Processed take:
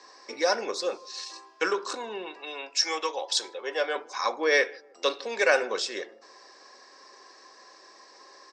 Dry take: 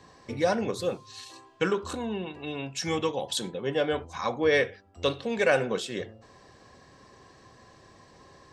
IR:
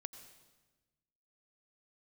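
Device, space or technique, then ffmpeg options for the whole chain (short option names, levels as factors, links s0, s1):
phone speaker on a table: -filter_complex "[0:a]asettb=1/sr,asplit=3[s0][s1][s2];[s0]atrim=end=2.344[s3];[s1]atrim=start=2.34:end=3.96,asetpts=PTS-STARTPTS,afade=t=in:d=0.004:c=qsin,afade=t=out:st=1.616:d=0.004:c=qsin,highpass=430[s4];[s2]atrim=start=3.956[s5];[s3][s4]acrossfade=d=0.004:c1=hsin:c2=qsin[s6];[s6][s5]acrossfade=d=0.004:c1=qsin:c2=hsin,highpass=f=390:w=0.5412,highpass=f=390:w=1.3066,equalizer=f=470:t=q:w=4:g=-5,equalizer=f=690:t=q:w=4:g=-5,equalizer=f=3100:t=q:w=4:g=-7,equalizer=f=5200:t=q:w=4:g=10,lowpass=f=7600:w=0.5412,lowpass=f=7600:w=1.3066,asplit=2[s7][s8];[s8]adelay=154,lowpass=f=830:p=1,volume=0.0794,asplit=2[s9][s10];[s10]adelay=154,lowpass=f=830:p=1,volume=0.45,asplit=2[s11][s12];[s12]adelay=154,lowpass=f=830:p=1,volume=0.45[s13];[s7][s9][s11][s13]amix=inputs=4:normalize=0,volume=1.58"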